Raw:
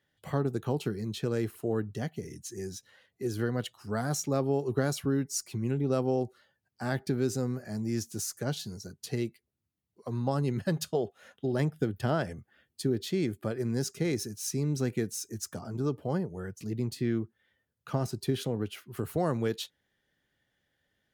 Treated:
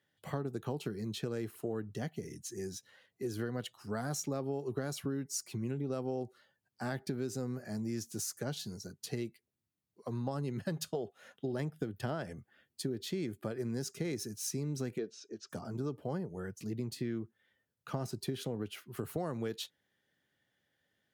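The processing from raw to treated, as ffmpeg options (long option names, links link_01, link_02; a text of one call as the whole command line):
ffmpeg -i in.wav -filter_complex "[0:a]asplit=3[link_01][link_02][link_03];[link_01]afade=type=out:start_time=14.97:duration=0.02[link_04];[link_02]highpass=300,equalizer=frequency=420:width_type=q:width=4:gain=5,equalizer=frequency=590:width_type=q:width=4:gain=4,equalizer=frequency=860:width_type=q:width=4:gain=-6,equalizer=frequency=2000:width_type=q:width=4:gain=-9,lowpass=frequency=4400:width=0.5412,lowpass=frequency=4400:width=1.3066,afade=type=in:start_time=14.97:duration=0.02,afade=type=out:start_time=15.49:duration=0.02[link_05];[link_03]afade=type=in:start_time=15.49:duration=0.02[link_06];[link_04][link_05][link_06]amix=inputs=3:normalize=0,highpass=100,acompressor=threshold=-31dB:ratio=4,volume=-2dB" out.wav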